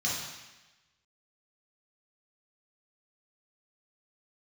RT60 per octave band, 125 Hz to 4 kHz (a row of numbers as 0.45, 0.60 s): 1.1, 1.1, 1.1, 1.1, 1.2, 1.1 s